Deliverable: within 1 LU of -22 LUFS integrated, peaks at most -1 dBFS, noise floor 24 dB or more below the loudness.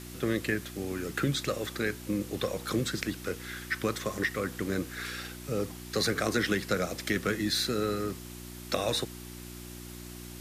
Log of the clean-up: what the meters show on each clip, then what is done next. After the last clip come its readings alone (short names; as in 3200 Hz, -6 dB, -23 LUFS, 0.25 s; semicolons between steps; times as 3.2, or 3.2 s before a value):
hum 60 Hz; harmonics up to 360 Hz; hum level -42 dBFS; noise floor -44 dBFS; noise floor target -56 dBFS; loudness -31.5 LUFS; peak -14.0 dBFS; loudness target -22.0 LUFS
-> de-hum 60 Hz, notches 6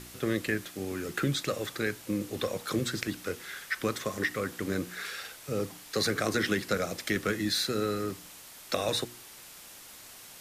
hum none; noise floor -49 dBFS; noise floor target -56 dBFS
-> denoiser 7 dB, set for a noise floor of -49 dBFS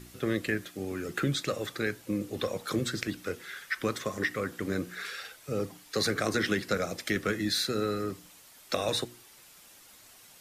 noise floor -55 dBFS; noise floor target -56 dBFS
-> denoiser 6 dB, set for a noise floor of -55 dBFS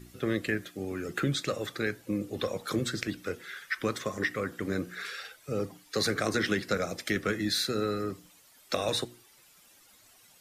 noise floor -60 dBFS; loudness -32.0 LUFS; peak -14.0 dBFS; loudness target -22.0 LUFS
-> gain +10 dB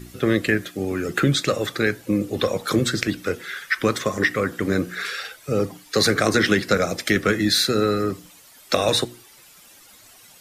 loudness -22.0 LUFS; peak -4.0 dBFS; noise floor -50 dBFS